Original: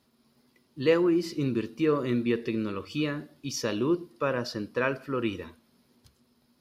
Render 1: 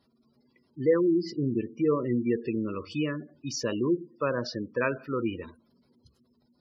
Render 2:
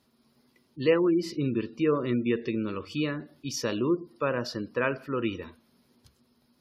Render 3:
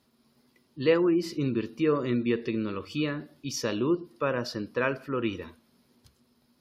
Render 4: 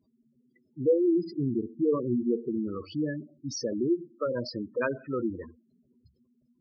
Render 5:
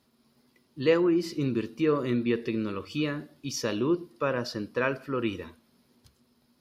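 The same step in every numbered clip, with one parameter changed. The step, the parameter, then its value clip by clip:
spectral gate, under each frame's peak: -20, -35, -45, -10, -60 dB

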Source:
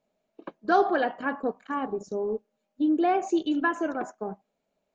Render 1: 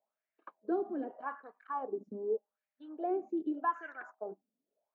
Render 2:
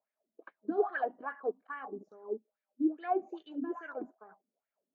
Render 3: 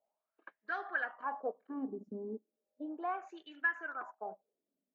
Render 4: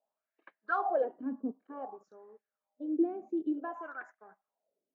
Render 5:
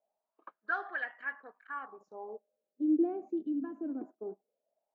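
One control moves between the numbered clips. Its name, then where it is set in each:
wah, rate: 0.83, 2.4, 0.35, 0.54, 0.21 Hz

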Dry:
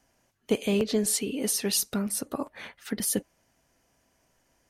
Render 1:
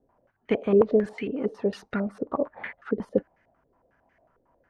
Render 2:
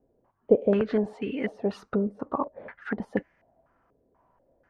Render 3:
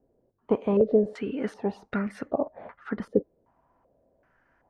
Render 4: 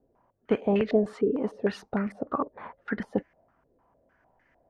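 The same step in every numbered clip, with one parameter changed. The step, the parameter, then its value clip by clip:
stepped low-pass, rate: 11, 4.1, 2.6, 6.6 Hz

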